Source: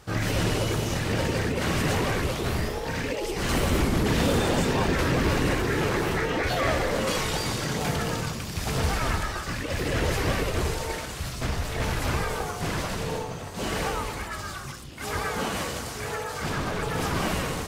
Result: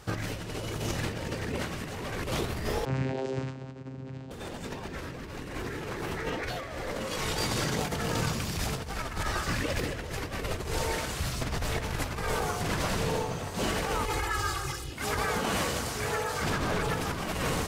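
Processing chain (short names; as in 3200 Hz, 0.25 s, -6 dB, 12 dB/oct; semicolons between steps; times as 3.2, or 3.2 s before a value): 14.05–14.93 comb 2.4 ms, depth 94%; negative-ratio compressor -29 dBFS, ratio -0.5; 2.85–4.31 vocoder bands 8, saw 132 Hz; gain -2 dB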